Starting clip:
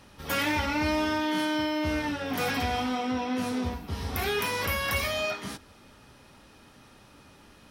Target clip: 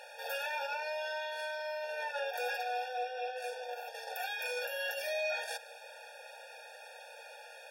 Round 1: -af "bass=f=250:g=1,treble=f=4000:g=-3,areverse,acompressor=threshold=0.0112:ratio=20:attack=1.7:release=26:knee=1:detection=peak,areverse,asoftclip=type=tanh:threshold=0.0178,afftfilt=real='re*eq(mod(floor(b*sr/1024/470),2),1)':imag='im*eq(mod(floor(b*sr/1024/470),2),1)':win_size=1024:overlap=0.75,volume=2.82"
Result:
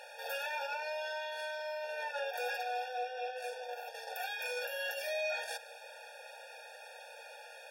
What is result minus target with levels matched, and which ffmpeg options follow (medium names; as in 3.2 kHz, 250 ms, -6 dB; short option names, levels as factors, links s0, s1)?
saturation: distortion +19 dB
-af "bass=f=250:g=1,treble=f=4000:g=-3,areverse,acompressor=threshold=0.0112:ratio=20:attack=1.7:release=26:knee=1:detection=peak,areverse,asoftclip=type=tanh:threshold=0.0596,afftfilt=real='re*eq(mod(floor(b*sr/1024/470),2),1)':imag='im*eq(mod(floor(b*sr/1024/470),2),1)':win_size=1024:overlap=0.75,volume=2.82"